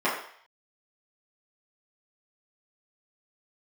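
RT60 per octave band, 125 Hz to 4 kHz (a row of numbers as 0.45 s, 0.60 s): 0.35 s, 0.40 s, 0.55 s, 0.60 s, 0.65 s, 0.65 s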